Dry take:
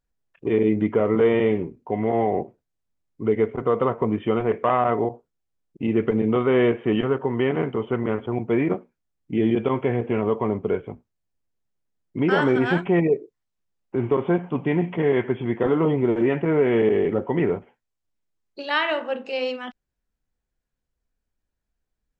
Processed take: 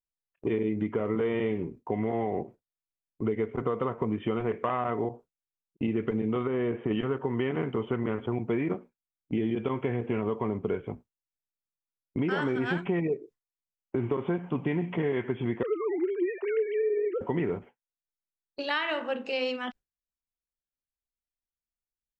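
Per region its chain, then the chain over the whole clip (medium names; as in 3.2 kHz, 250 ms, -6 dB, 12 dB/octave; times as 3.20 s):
6.47–6.91 s: treble shelf 2.2 kHz -11 dB + compression, threshold -20 dBFS
15.63–17.21 s: formants replaced by sine waves + high-pass 330 Hz
whole clip: gate with hold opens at -32 dBFS; dynamic bell 630 Hz, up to -4 dB, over -33 dBFS, Q 1.3; compression, threshold -25 dBFS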